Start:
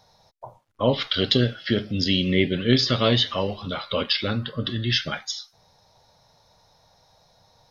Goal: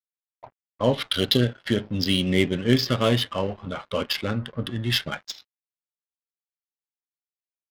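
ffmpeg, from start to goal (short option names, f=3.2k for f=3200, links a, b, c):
-filter_complex "[0:a]asettb=1/sr,asplit=3[a][b][c];[a]atrim=end=2.594[d];[b]atrim=start=2.59:end=4.86,asetpts=PTS-STARTPTS,afade=t=in:d=0.004:c=qsin,afade=t=out:st=2.266:d=0.004:c=qsin,equalizer=f=3.9k:t=o:w=0.31:g=-8.5[e];[c]atrim=start=4.856[f];[d][e]acrossfade=d=0.004:c1=hsin:c2=qsin[g];[g][f]acrossfade=d=0.004:c1=qsin:c2=hsin,aeval=exprs='sgn(val(0))*max(abs(val(0))-0.00708,0)':c=same,adynamicsmooth=sensitivity=3.5:basefreq=1.9k"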